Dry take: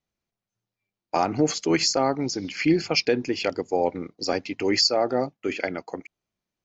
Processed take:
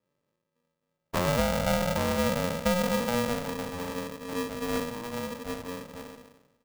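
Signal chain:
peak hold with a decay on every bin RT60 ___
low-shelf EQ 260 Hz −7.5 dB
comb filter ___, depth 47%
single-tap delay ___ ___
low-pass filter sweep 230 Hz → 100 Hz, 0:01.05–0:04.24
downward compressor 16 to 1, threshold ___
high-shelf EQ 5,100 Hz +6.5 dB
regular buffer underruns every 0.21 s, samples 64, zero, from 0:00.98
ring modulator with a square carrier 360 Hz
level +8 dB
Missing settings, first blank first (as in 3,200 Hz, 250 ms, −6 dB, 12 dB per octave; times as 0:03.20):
1.12 s, 1.4 ms, 151 ms, −18 dB, −30 dBFS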